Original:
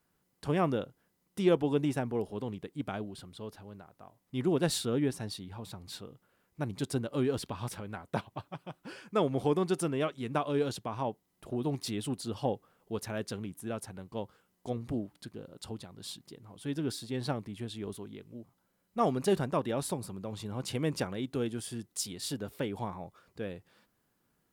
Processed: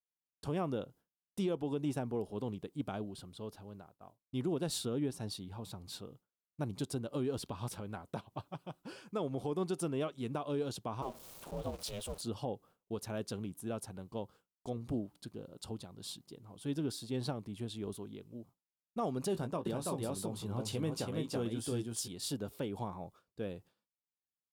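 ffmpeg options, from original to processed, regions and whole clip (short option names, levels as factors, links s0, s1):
-filter_complex "[0:a]asettb=1/sr,asplit=3[s0][s1][s2];[s0]atrim=end=11.024[s3];[s1]atrim=start=11.02:end=12.21,asetpts=PTS-STARTPTS,afade=t=in:d=0.004:c=qsin,afade=t=out:st=1.186:d=0.004:c=qsin,aeval=exprs='val(0)+0.5*0.00944*sgn(val(0))':c=same,highpass=320,aeval=exprs='val(0)*sin(2*PI*200*n/s)':c=same[s4];[s2]atrim=start=12.206[s5];[s3][s4]acrossfade=d=0.004:c1=hsin:c2=qsin[s6];[s6][s5]acrossfade=d=0.004:c1=qsin:c2=hsin,asettb=1/sr,asplit=3[s7][s8][s9];[s7]atrim=end=19.334[s10];[s8]atrim=start=19.33:end=22.08,asetpts=PTS-STARTPTS,afade=t=in:d=0.004:c=qsin,afade=t=out:st=2.746:d=0.004:c=qsin,asplit=2[s11][s12];[s12]adelay=18,volume=0.335[s13];[s11][s13]amix=inputs=2:normalize=0,atrim=end_sample=121275,aecho=1:1:330:0.708,atrim=end_sample=121275[s14];[s9]atrim=start=22.076[s15];[s10][s14]acrossfade=d=0.004:c1=hsin:c2=qsin[s16];[s16][s15]acrossfade=d=0.004:c1=qsin:c2=hsin,agate=range=0.0224:threshold=0.00282:ratio=3:detection=peak,equalizer=f=1900:t=o:w=0.76:g=-7.5,alimiter=level_in=1.12:limit=0.0631:level=0:latency=1:release=204,volume=0.891,volume=0.841"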